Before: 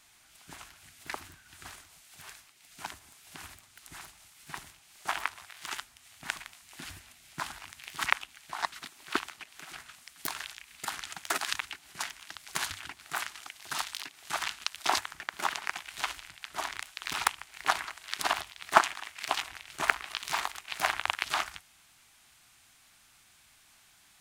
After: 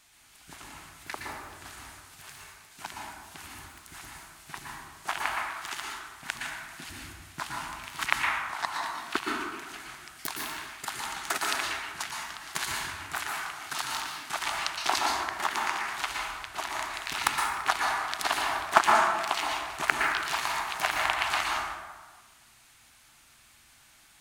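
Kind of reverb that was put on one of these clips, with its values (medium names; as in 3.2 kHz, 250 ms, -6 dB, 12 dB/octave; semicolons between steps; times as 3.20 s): plate-style reverb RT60 1.4 s, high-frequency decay 0.45×, pre-delay 105 ms, DRR -2 dB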